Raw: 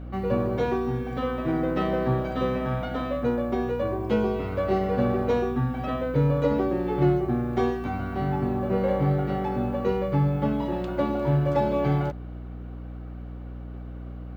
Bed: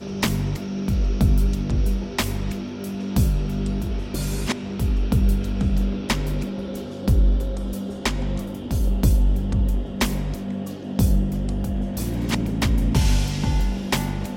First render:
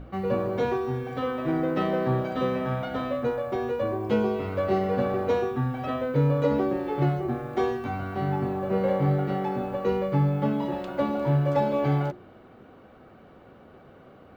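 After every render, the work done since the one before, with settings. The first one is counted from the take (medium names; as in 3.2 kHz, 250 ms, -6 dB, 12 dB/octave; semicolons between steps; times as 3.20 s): hum notches 60/120/180/240/300/360 Hz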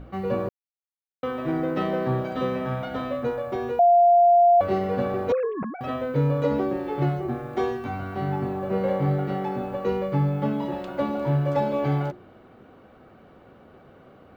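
0.49–1.23 s: mute; 3.79–4.61 s: bleep 697 Hz -12.5 dBFS; 5.32–5.81 s: formants replaced by sine waves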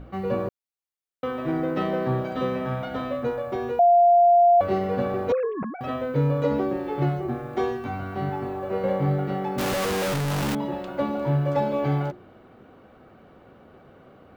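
8.29–8.84 s: peaking EQ 170 Hz -11 dB; 9.58–10.55 s: one-bit comparator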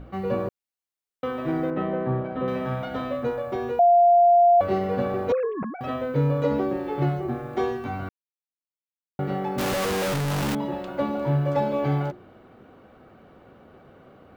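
1.70–2.48 s: distance through air 490 m; 8.09–9.19 s: mute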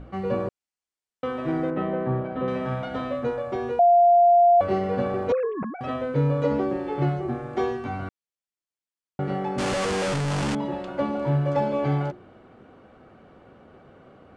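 steep low-pass 9.4 kHz 36 dB/octave; band-stop 3.8 kHz, Q 25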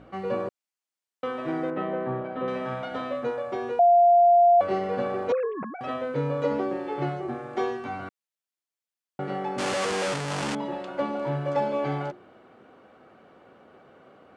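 high-pass 350 Hz 6 dB/octave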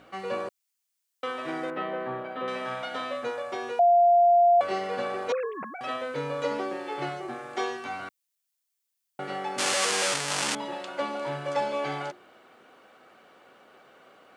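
tilt EQ +3.5 dB/octave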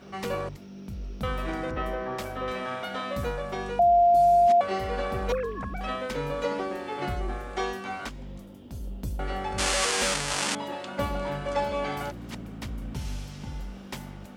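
add bed -15.5 dB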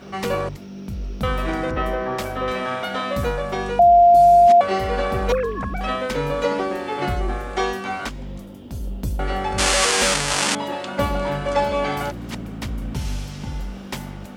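trim +7.5 dB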